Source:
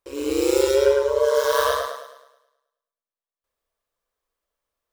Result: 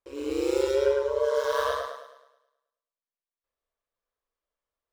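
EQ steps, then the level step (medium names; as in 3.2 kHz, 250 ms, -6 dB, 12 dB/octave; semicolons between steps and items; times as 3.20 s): treble shelf 6.9 kHz -12 dB; -6.0 dB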